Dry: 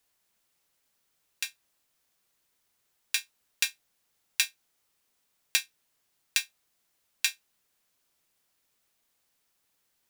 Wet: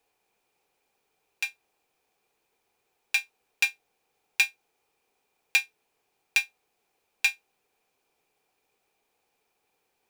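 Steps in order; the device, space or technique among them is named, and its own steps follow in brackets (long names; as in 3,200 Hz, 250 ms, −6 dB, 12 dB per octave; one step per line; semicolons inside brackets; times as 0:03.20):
inside a helmet (high-shelf EQ 4,300 Hz −6 dB; hollow resonant body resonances 440/770/2,400 Hz, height 13 dB, ringing for 20 ms)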